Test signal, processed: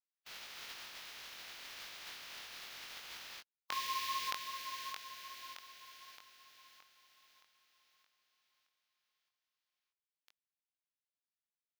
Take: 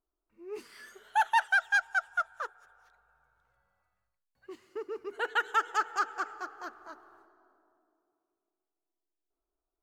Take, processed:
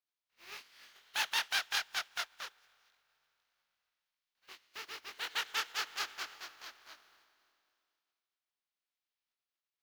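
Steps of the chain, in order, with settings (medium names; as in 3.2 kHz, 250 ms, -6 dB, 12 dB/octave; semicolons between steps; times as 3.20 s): spectral contrast reduction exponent 0.28; pre-emphasis filter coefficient 0.97; chorus 2.6 Hz, delay 20 ms, depth 2.1 ms; distance through air 280 m; trim +12.5 dB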